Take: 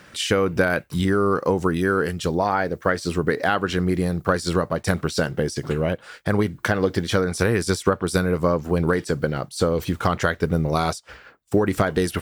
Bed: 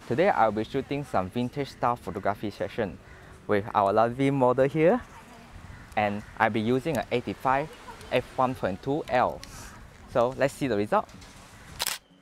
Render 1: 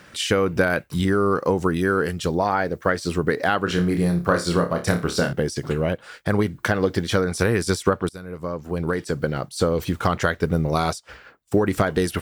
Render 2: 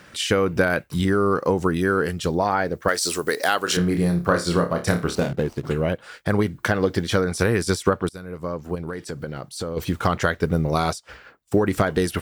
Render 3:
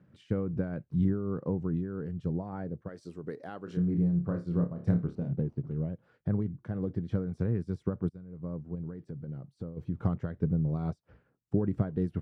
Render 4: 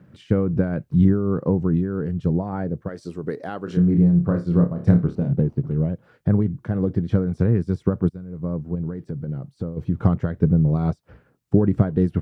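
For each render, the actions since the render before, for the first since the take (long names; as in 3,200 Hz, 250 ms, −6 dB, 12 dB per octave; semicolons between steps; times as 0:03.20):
0:03.64–0:05.33: flutter between parallel walls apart 4.9 metres, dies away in 0.27 s; 0:08.09–0:09.37: fade in, from −22 dB
0:02.88–0:03.77: bass and treble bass −14 dB, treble +15 dB; 0:05.15–0:05.65: running median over 25 samples; 0:08.75–0:09.77: downward compressor 2 to 1, threshold −32 dBFS
resonant band-pass 140 Hz, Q 1.4; amplitude modulation by smooth noise, depth 65%
level +11 dB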